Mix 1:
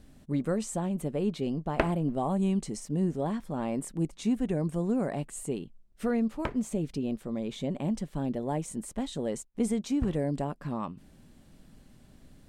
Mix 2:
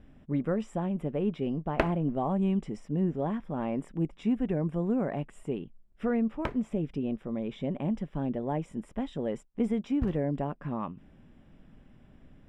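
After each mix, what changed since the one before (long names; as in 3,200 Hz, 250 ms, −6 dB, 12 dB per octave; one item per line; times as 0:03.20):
speech: add Savitzky-Golay smoothing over 25 samples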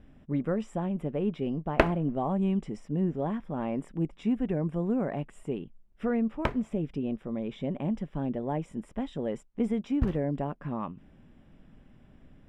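background +5.0 dB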